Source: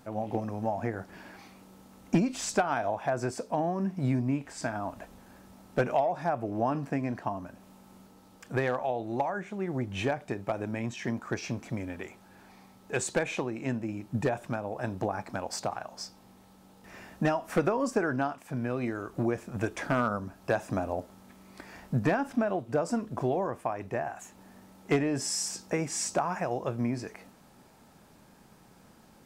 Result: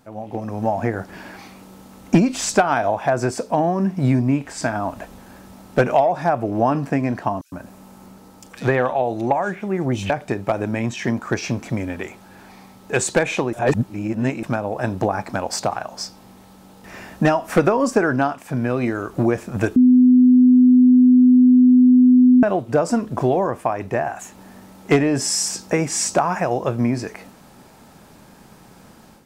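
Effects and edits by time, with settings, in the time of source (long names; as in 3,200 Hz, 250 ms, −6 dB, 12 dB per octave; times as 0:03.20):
0:07.41–0:10.10: multiband delay without the direct sound highs, lows 110 ms, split 3,400 Hz
0:13.53–0:14.43: reverse
0:19.76–0:22.43: beep over 251 Hz −18.5 dBFS
whole clip: automatic gain control gain up to 10.5 dB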